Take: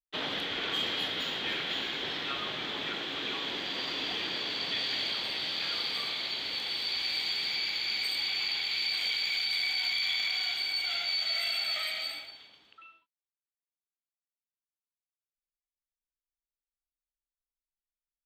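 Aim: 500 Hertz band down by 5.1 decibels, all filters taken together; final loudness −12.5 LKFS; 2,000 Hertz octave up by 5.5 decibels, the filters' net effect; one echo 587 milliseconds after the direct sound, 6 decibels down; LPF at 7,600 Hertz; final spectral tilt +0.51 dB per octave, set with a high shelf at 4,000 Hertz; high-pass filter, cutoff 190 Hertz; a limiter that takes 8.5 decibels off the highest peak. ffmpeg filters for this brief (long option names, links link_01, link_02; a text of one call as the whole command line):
ffmpeg -i in.wav -af "highpass=190,lowpass=7600,equalizer=frequency=500:width_type=o:gain=-7,equalizer=frequency=2000:width_type=o:gain=4.5,highshelf=frequency=4000:gain=8.5,alimiter=limit=-24dB:level=0:latency=1,aecho=1:1:587:0.501,volume=17dB" out.wav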